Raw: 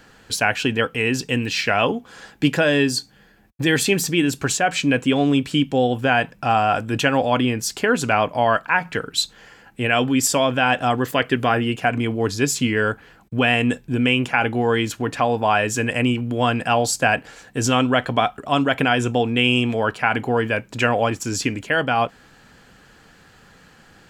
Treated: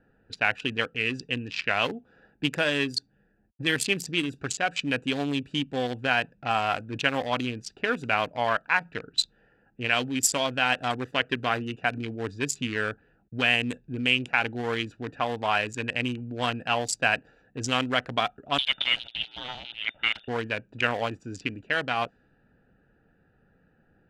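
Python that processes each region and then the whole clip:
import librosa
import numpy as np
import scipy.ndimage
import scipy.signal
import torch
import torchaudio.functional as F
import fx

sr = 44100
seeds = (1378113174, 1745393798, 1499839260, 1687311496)

y = fx.chain(x, sr, fx.lower_of_two(delay_ms=1.4),
    fx.freq_invert(carrier_hz=3600), at=(18.58, 20.28))
y = fx.wiener(y, sr, points=41)
y = fx.env_lowpass(y, sr, base_hz=2200.0, full_db=-15.5)
y = fx.tilt_shelf(y, sr, db=-6.0, hz=1100.0)
y = y * 10.0 ** (-5.0 / 20.0)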